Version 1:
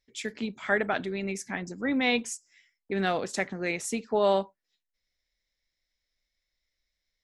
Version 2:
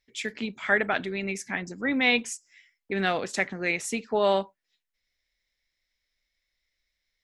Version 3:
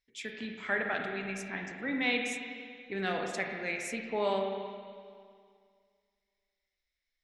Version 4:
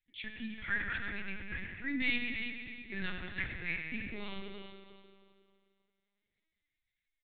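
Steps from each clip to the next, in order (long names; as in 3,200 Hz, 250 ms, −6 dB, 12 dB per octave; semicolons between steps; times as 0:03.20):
parametric band 2,300 Hz +5.5 dB 1.5 octaves
spring reverb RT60 2.1 s, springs 36/43/49 ms, chirp 20 ms, DRR 2 dB; level −8.5 dB
Butterworth band-reject 650 Hz, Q 0.56; repeating echo 327 ms, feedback 23%, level −9.5 dB; linear-prediction vocoder at 8 kHz pitch kept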